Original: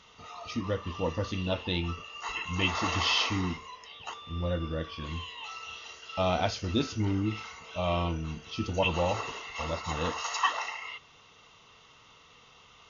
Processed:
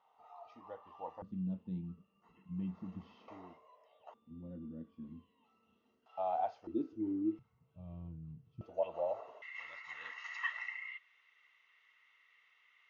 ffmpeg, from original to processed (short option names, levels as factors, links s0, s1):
-af "asetnsamples=n=441:p=0,asendcmd='1.22 bandpass f 190;3.28 bandpass f 620;4.14 bandpass f 230;6.06 bandpass f 770;6.67 bandpass f 320;7.39 bandpass f 130;8.61 bandpass f 630;9.42 bandpass f 2000',bandpass=f=790:t=q:w=7.5:csg=0"